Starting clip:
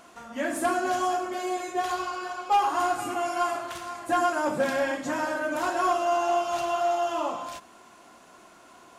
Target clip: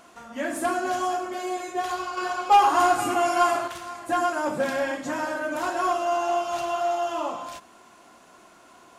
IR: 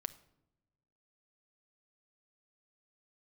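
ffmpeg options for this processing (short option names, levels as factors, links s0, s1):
-filter_complex "[0:a]asettb=1/sr,asplit=3[s0][s1][s2];[s0]atrim=end=2.174[s3];[s1]atrim=start=2.17:end=3.68,asetpts=PTS-STARTPTS,afade=t=in:d=0.004:c=qsin,afade=t=out:st=1.506:d=0.004:c=qsin,acontrast=52[s4];[s2]atrim=start=3.676[s5];[s3][s4]acrossfade=d=0.004:c1=hsin:c2=qsin[s6];[s6][s5]acrossfade=d=0.004:c1=qsin:c2=hsin"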